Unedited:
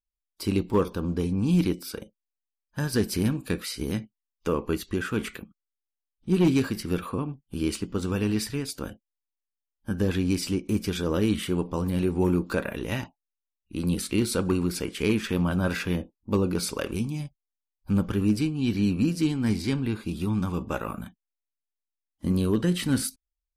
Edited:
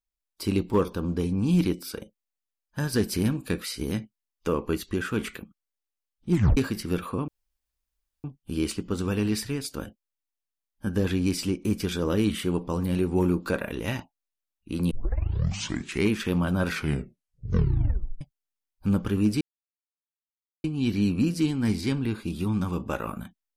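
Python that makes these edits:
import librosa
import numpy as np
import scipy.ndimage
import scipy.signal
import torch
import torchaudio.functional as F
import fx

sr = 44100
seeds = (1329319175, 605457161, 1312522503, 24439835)

y = fx.edit(x, sr, fx.tape_stop(start_s=6.32, length_s=0.25),
    fx.insert_room_tone(at_s=7.28, length_s=0.96),
    fx.tape_start(start_s=13.95, length_s=1.19),
    fx.tape_stop(start_s=15.7, length_s=1.55),
    fx.insert_silence(at_s=18.45, length_s=1.23), tone=tone)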